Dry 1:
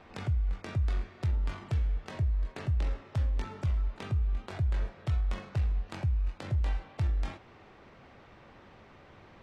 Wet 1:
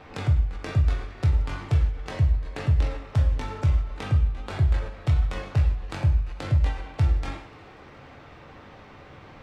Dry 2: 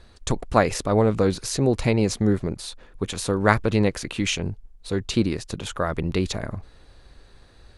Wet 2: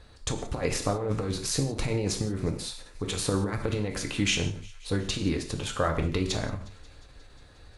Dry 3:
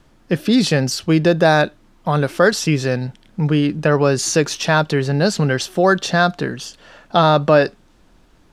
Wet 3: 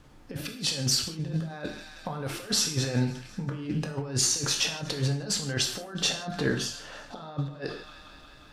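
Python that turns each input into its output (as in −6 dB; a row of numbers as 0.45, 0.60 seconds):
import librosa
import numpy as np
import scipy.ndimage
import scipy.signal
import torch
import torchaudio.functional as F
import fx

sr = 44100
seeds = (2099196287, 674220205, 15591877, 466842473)

y = fx.echo_wet_highpass(x, sr, ms=179, feedback_pct=77, hz=2200.0, wet_db=-22.5)
y = fx.over_compress(y, sr, threshold_db=-22.0, ratio=-0.5)
y = fx.rev_gated(y, sr, seeds[0], gate_ms=190, shape='falling', drr_db=2.5)
y = fx.end_taper(y, sr, db_per_s=120.0)
y = librosa.util.normalize(y) * 10.0 ** (-12 / 20.0)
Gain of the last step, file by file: +6.0, −4.5, −8.5 decibels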